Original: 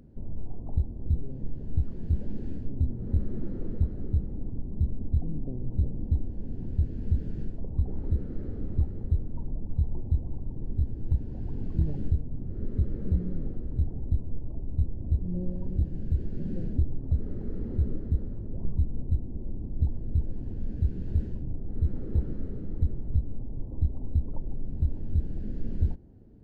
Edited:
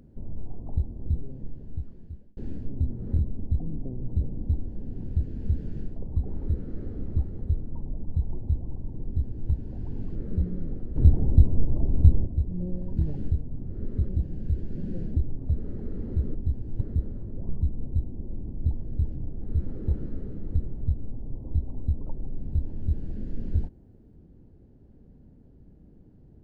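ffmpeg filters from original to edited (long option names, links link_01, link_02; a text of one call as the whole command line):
ffmpeg -i in.wav -filter_complex "[0:a]asplit=11[link_01][link_02][link_03][link_04][link_05][link_06][link_07][link_08][link_09][link_10][link_11];[link_01]atrim=end=2.37,asetpts=PTS-STARTPTS,afade=type=out:start_time=1.06:duration=1.31[link_12];[link_02]atrim=start=2.37:end=3.192,asetpts=PTS-STARTPTS,afade=type=in:duration=0.004:curve=hsin[link_13];[link_03]atrim=start=4.808:end=11.772[link_14];[link_04]atrim=start=12.888:end=13.702[link_15];[link_05]atrim=start=13.698:end=15.002,asetpts=PTS-STARTPTS,volume=10.5dB[link_16];[link_06]atrim=start=14.998:end=15.712[link_17];[link_07]atrim=start=11.768:end=12.892[link_18];[link_08]atrim=start=15.708:end=17.972[link_19];[link_09]atrim=start=10.668:end=11.132[link_20];[link_10]atrim=start=17.968:end=20.282[link_21];[link_11]atrim=start=21.388[link_22];[link_12][link_13]concat=n=2:v=0:a=1[link_23];[link_23][link_14]acrossfade=duration=0.004:curve1=hsin:curve2=hsin[link_24];[link_24][link_15]acrossfade=duration=0.004:curve1=hsin:curve2=hsin[link_25];[link_25][link_16]acrossfade=duration=0.004:curve1=hsin:curve2=hsin[link_26];[link_26][link_17]acrossfade=duration=0.004:curve1=hsin:curve2=hsin[link_27];[link_27][link_18]acrossfade=duration=0.004:curve1=hsin:curve2=hsin[link_28];[link_28][link_19]acrossfade=duration=0.004:curve1=hsin:curve2=hsin[link_29];[link_29][link_20]acrossfade=duration=0.004:curve1=hsin:curve2=hsin[link_30];[link_30][link_21]acrossfade=duration=0.004:curve1=hsin:curve2=hsin[link_31];[link_31][link_22]acrossfade=duration=0.004:curve1=hsin:curve2=hsin" out.wav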